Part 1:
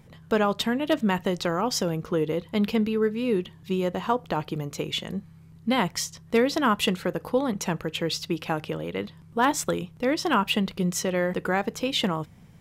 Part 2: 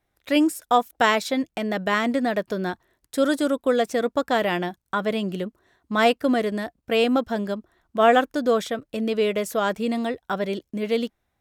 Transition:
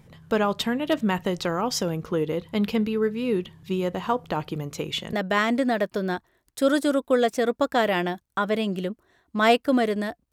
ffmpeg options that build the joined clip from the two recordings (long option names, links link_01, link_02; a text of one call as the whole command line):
ffmpeg -i cue0.wav -i cue1.wav -filter_complex "[0:a]apad=whole_dur=10.32,atrim=end=10.32,atrim=end=5.132[link_01];[1:a]atrim=start=1.688:end=6.88[link_02];[link_01][link_02]acrossfade=duration=0.004:curve1=hsin:curve2=hsin" out.wav